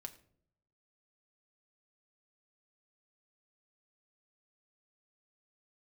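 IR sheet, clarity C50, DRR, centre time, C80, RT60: 15.5 dB, 5.5 dB, 6 ms, 17.5 dB, 0.60 s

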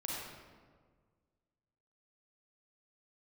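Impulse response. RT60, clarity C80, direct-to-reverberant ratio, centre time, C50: 1.6 s, 0.0 dB, −4.5 dB, 102 ms, −2.5 dB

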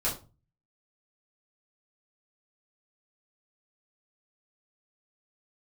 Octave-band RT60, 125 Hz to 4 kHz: 0.60, 0.40, 0.35, 0.30, 0.25, 0.25 seconds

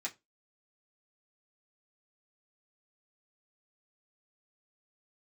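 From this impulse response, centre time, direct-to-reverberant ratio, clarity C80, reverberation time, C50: 9 ms, −4.5 dB, 29.0 dB, non-exponential decay, 20.5 dB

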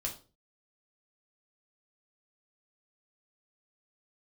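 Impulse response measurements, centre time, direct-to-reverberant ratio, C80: 16 ms, −1.5 dB, 16.0 dB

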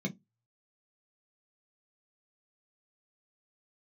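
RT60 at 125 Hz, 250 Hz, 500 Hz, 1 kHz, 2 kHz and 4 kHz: 0.25, 0.25, 0.15, 0.15, 0.10, 0.15 seconds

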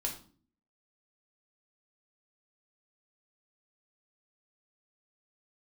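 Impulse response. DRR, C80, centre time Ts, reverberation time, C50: 0.0 dB, 13.5 dB, 18 ms, 0.45 s, 8.5 dB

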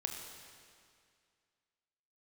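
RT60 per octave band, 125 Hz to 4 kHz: 2.2, 2.2, 2.2, 2.2, 2.2, 2.0 seconds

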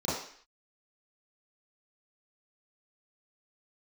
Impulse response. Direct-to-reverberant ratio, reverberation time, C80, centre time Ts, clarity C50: −11.0 dB, 0.55 s, 6.0 dB, 59 ms, 1.0 dB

